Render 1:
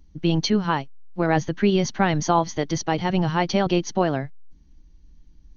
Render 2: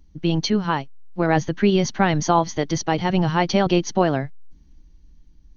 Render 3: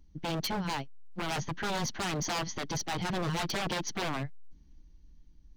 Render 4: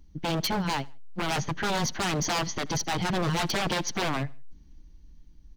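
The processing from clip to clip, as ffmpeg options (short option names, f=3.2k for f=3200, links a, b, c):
-af "dynaudnorm=f=220:g=9:m=3.5dB"
-af "aeval=exprs='0.0944*(abs(mod(val(0)/0.0944+3,4)-2)-1)':c=same,volume=-6dB"
-af "aecho=1:1:79|158:0.0631|0.024,volume=5dB"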